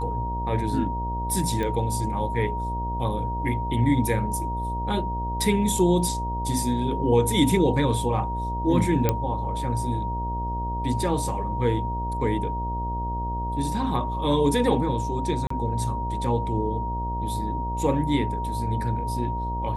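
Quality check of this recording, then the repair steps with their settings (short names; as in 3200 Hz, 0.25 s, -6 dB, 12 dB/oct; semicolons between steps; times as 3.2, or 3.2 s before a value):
buzz 60 Hz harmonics 13 -30 dBFS
tone 940 Hz -29 dBFS
1.63 pop -17 dBFS
9.09 pop -7 dBFS
15.47–15.5 gap 34 ms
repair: de-click; de-hum 60 Hz, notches 13; notch 940 Hz, Q 30; interpolate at 15.47, 34 ms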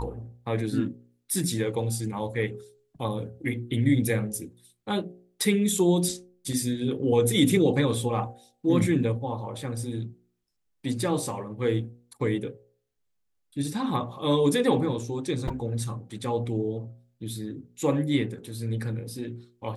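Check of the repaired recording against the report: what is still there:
none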